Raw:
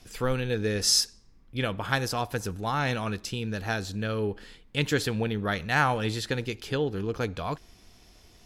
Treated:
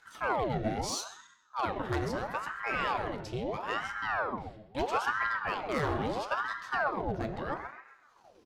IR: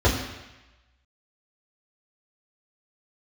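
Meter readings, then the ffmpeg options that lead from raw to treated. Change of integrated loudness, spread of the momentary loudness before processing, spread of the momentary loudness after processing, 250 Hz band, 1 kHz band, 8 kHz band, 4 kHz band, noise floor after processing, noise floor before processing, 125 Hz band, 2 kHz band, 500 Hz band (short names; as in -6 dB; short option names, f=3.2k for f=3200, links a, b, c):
-4.5 dB, 9 LU, 8 LU, -6.5 dB, +0.5 dB, -12.5 dB, -12.0 dB, -62 dBFS, -56 dBFS, -9.5 dB, -2.5 dB, -4.5 dB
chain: -filter_complex "[0:a]agate=range=-33dB:threshold=-42dB:ratio=3:detection=peak,aemphasis=mode=reproduction:type=cd,acompressor=mode=upward:threshold=-39dB:ratio=2.5,asoftclip=type=hard:threshold=-20.5dB,asplit=2[a][b];[b]adelay=131,lowpass=f=1.5k:p=1,volume=-8dB,asplit=2[c][d];[d]adelay=131,lowpass=f=1.5k:p=1,volume=0.41,asplit=2[e][f];[f]adelay=131,lowpass=f=1.5k:p=1,volume=0.41,asplit=2[g][h];[h]adelay=131,lowpass=f=1.5k:p=1,volume=0.41,asplit=2[i][j];[j]adelay=131,lowpass=f=1.5k:p=1,volume=0.41[k];[a][c][e][g][i][k]amix=inputs=6:normalize=0,asplit=2[l][m];[1:a]atrim=start_sample=2205,asetrate=52920,aresample=44100,lowshelf=f=170:g=-7.5[n];[m][n]afir=irnorm=-1:irlink=0,volume=-19dB[o];[l][o]amix=inputs=2:normalize=0,aeval=exprs='val(0)*sin(2*PI*860*n/s+860*0.75/0.76*sin(2*PI*0.76*n/s))':c=same,volume=-6.5dB"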